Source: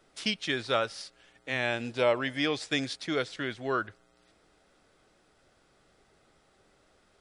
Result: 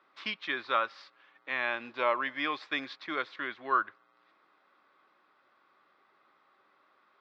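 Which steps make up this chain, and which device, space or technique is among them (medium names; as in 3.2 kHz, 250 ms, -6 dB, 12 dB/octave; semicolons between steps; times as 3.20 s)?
phone earpiece (cabinet simulation 420–3500 Hz, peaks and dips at 460 Hz -9 dB, 690 Hz -7 dB, 1.1 kHz +10 dB, 3 kHz -6 dB)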